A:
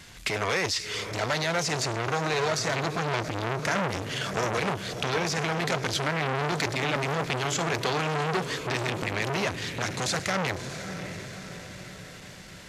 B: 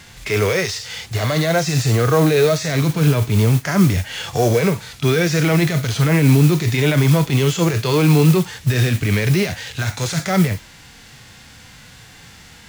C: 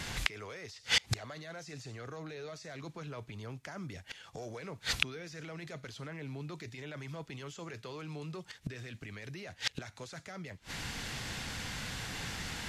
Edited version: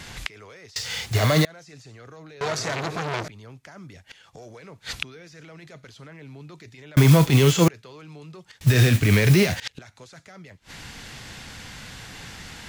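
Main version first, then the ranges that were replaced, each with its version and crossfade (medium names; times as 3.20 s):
C
0.76–1.45 s: from B
2.41–3.28 s: from A
6.97–7.68 s: from B
8.61–9.60 s: from B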